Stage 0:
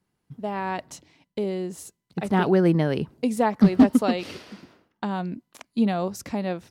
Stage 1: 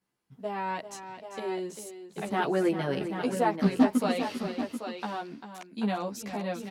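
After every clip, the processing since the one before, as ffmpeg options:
-filter_complex "[0:a]lowshelf=f=210:g=-12,asplit=2[s0][s1];[s1]aecho=0:1:395|786:0.299|0.398[s2];[s0][s2]amix=inputs=2:normalize=0,asplit=2[s3][s4];[s4]adelay=12,afreqshift=-0.33[s5];[s3][s5]amix=inputs=2:normalize=1"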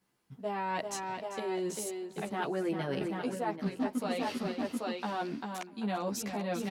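-filter_complex "[0:a]areverse,acompressor=threshold=0.0141:ratio=5,areverse,asplit=2[s0][s1];[s1]adelay=641.4,volume=0.0708,highshelf=f=4000:g=-14.4[s2];[s0][s2]amix=inputs=2:normalize=0,volume=1.88"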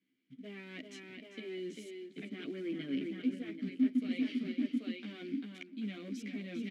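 -filter_complex "[0:a]acrusher=bits=5:mode=log:mix=0:aa=0.000001,asoftclip=type=hard:threshold=0.0398,asplit=3[s0][s1][s2];[s0]bandpass=f=270:t=q:w=8,volume=1[s3];[s1]bandpass=f=2290:t=q:w=8,volume=0.501[s4];[s2]bandpass=f=3010:t=q:w=8,volume=0.355[s5];[s3][s4][s5]amix=inputs=3:normalize=0,volume=2.51"

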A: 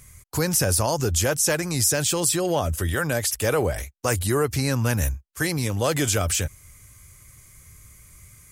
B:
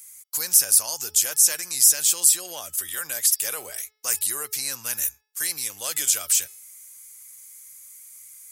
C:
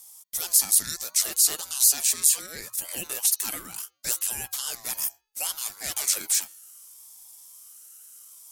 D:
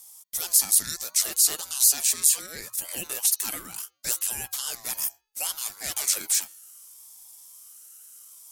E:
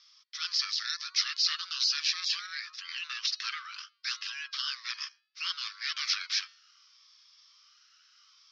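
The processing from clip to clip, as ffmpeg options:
-af "aderivative,bandreject=f=429.3:t=h:w=4,bandreject=f=858.6:t=h:w=4,bandreject=f=1287.9:t=h:w=4,bandreject=f=1717.2:t=h:w=4,bandreject=f=2146.5:t=h:w=4,bandreject=f=2575.8:t=h:w=4,bandreject=f=3005.1:t=h:w=4,bandreject=f=3434.4:t=h:w=4,bandreject=f=3863.7:t=h:w=4,bandreject=f=4293:t=h:w=4,bandreject=f=4722.3:t=h:w=4,bandreject=f=5151.6:t=h:w=4,bandreject=f=5580.9:t=h:w=4,volume=1.78"
-af "aeval=exprs='val(0)*sin(2*PI*1000*n/s+1000*0.25/0.69*sin(2*PI*0.69*n/s))':c=same"
-af anull
-af "asuperpass=centerf=2500:order=20:qfactor=0.58,volume=1.5"

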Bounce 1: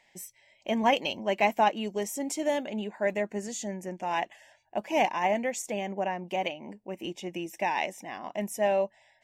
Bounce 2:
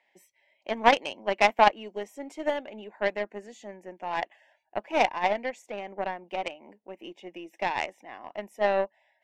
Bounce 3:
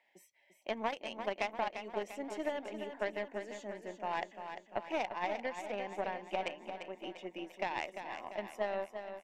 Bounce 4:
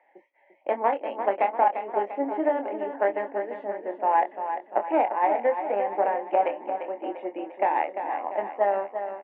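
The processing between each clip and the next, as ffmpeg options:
-filter_complex "[0:a]acrossover=split=250 3500:gain=0.0794 1 0.158[s0][s1][s2];[s0][s1][s2]amix=inputs=3:normalize=0,aeval=exprs='0.282*(cos(1*acos(clip(val(0)/0.282,-1,1)))-cos(1*PI/2))+0.0562*(cos(3*acos(clip(val(0)/0.282,-1,1)))-cos(3*PI/2))+0.00708*(cos(7*acos(clip(val(0)/0.282,-1,1)))-cos(7*PI/2))+0.00178*(cos(8*acos(clip(val(0)/0.282,-1,1)))-cos(8*PI/2))':c=same,volume=2.66"
-filter_complex "[0:a]acompressor=threshold=0.0398:ratio=16,asplit=2[s0][s1];[s1]aecho=0:1:346|692|1038|1384|1730|2076:0.376|0.199|0.106|0.056|0.0297|0.0157[s2];[s0][s2]amix=inputs=2:normalize=0,volume=0.708"
-filter_complex "[0:a]highpass=f=270:w=0.5412,highpass=f=270:w=1.3066,equalizer=f=290:t=q:w=4:g=7,equalizer=f=520:t=q:w=4:g=7,equalizer=f=830:t=q:w=4:g=9,lowpass=f=2000:w=0.5412,lowpass=f=2000:w=1.3066,asplit=2[s0][s1];[s1]adelay=25,volume=0.422[s2];[s0][s2]amix=inputs=2:normalize=0,volume=2.37"

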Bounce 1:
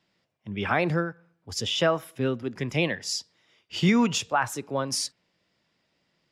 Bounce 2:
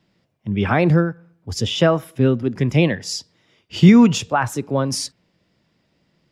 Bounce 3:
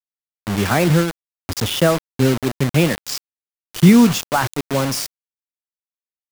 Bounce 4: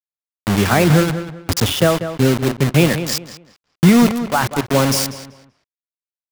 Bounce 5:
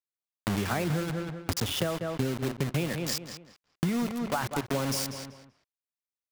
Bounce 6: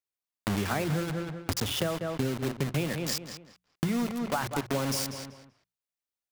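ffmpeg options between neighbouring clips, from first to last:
-af "lowshelf=f=420:g=11,volume=1.41"
-af "acrusher=bits=3:mix=0:aa=0.000001"
-filter_complex "[0:a]dynaudnorm=f=220:g=3:m=3.76,aeval=exprs='val(0)*gte(abs(val(0)),0.178)':c=same,asplit=2[s0][s1];[s1]adelay=192,lowpass=f=3200:p=1,volume=0.299,asplit=2[s2][s3];[s3]adelay=192,lowpass=f=3200:p=1,volume=0.28,asplit=2[s4][s5];[s5]adelay=192,lowpass=f=3200:p=1,volume=0.28[s6];[s2][s4][s6]amix=inputs=3:normalize=0[s7];[s0][s7]amix=inputs=2:normalize=0,volume=0.841"
-af "acompressor=threshold=0.1:ratio=10,volume=0.531"
-af "bandreject=f=60:t=h:w=6,bandreject=f=120:t=h:w=6,bandreject=f=180:t=h:w=6"

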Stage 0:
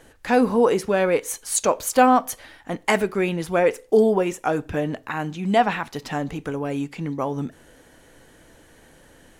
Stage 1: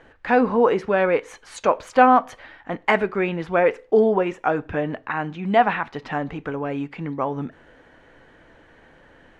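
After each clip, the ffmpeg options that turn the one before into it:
-af "lowpass=2000,tiltshelf=f=760:g=-4,volume=1.26"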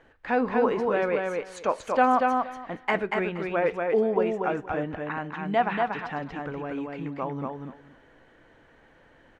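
-af "aecho=1:1:236|472|708:0.668|0.114|0.0193,volume=0.447"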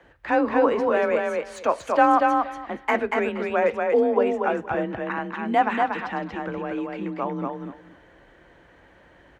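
-filter_complex "[0:a]acrossover=split=100|2400[s0][s1][s2];[s2]asoftclip=type=tanh:threshold=0.0112[s3];[s0][s1][s3]amix=inputs=3:normalize=0,afreqshift=33,volume=1.5"

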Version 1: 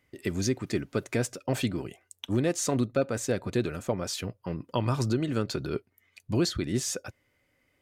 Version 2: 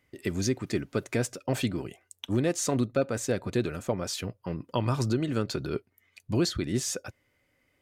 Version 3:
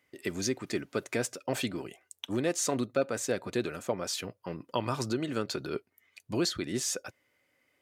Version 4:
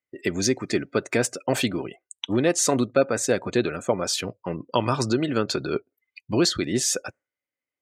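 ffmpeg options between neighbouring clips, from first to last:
-af anull
-af "highpass=f=340:p=1"
-af "afftdn=nr=29:nf=-50,volume=2.66"

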